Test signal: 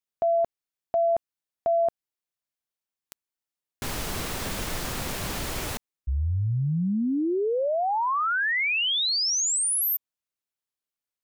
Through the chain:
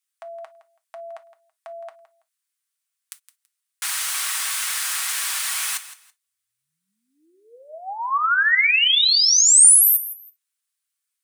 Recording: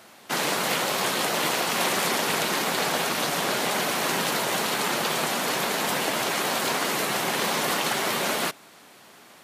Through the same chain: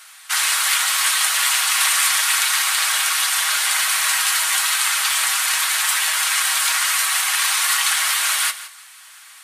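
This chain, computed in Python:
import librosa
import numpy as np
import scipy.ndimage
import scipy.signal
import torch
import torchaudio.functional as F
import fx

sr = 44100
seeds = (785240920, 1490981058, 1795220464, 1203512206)

y = scipy.signal.sosfilt(scipy.signal.butter(4, 1200.0, 'highpass', fs=sr, output='sos'), x)
y = fx.peak_eq(y, sr, hz=9100.0, db=8.0, octaves=0.6)
y = y + 0.35 * np.pad(y, (int(6.3 * sr / 1000.0), 0))[:len(y)]
y = fx.echo_feedback(y, sr, ms=165, feedback_pct=21, wet_db=-15)
y = fx.rev_gated(y, sr, seeds[0], gate_ms=80, shape='falling', drr_db=10.0)
y = F.gain(torch.from_numpy(y), 6.5).numpy()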